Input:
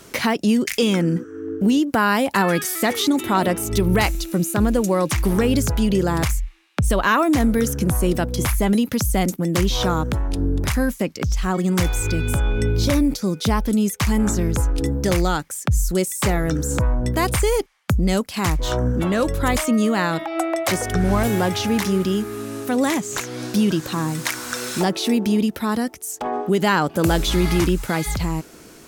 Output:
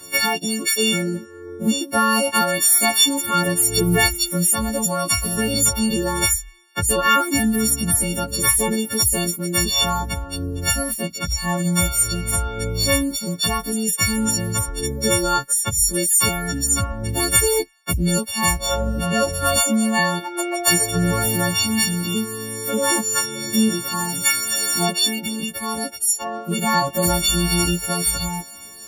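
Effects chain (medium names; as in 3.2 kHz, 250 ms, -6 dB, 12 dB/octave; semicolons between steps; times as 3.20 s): partials quantised in pitch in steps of 4 st; chorus voices 2, 0.13 Hz, delay 11 ms, depth 1.9 ms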